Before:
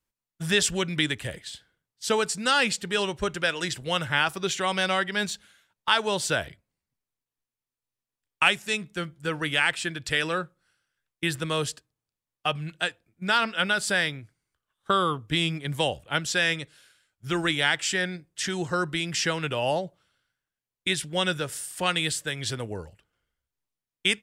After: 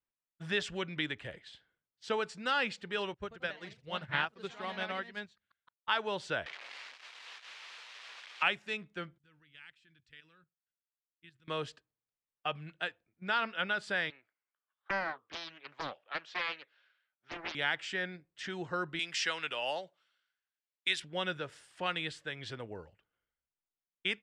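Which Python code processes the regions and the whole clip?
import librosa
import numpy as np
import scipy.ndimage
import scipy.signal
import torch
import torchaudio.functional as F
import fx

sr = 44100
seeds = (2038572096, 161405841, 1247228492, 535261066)

y = fx.chain(x, sr, fx.peak_eq(hz=89.0, db=14.0, octaves=1.1),
    fx.echo_pitch(ms=98, semitones=2, count=3, db_per_echo=-6.0),
    fx.upward_expand(threshold_db=-35.0, expansion=2.5), at=(3.14, 5.89))
y = fx.chain(y, sr, fx.crossing_spikes(level_db=-13.0),
    fx.bandpass_edges(low_hz=480.0, high_hz=3400.0), at=(6.46, 8.43))
y = fx.chain(y, sr, fx.tone_stack(knobs='6-0-2'),
    fx.level_steps(step_db=11), at=(9.18, 11.48))
y = fx.chain(y, sr, fx.highpass(hz=670.0, slope=12),
    fx.air_absorb(metres=160.0),
    fx.doppler_dist(depth_ms=0.75), at=(14.1, 17.55))
y = fx.chain(y, sr, fx.highpass(hz=130.0, slope=12),
    fx.tilt_eq(slope=4.0), at=(18.99, 21.0))
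y = scipy.signal.sosfilt(scipy.signal.butter(2, 3100.0, 'lowpass', fs=sr, output='sos'), y)
y = fx.low_shelf(y, sr, hz=200.0, db=-8.0)
y = y * librosa.db_to_amplitude(-7.5)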